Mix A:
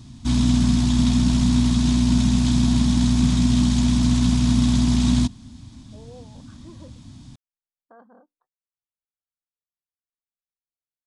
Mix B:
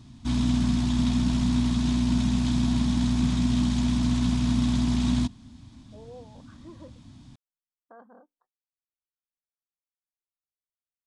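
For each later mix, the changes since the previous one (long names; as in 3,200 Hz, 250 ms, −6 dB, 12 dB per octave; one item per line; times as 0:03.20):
background −3.5 dB
master: add bass and treble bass −3 dB, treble −6 dB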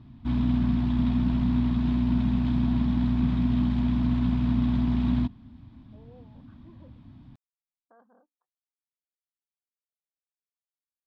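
speech −9.0 dB
background: add high-frequency loss of the air 420 metres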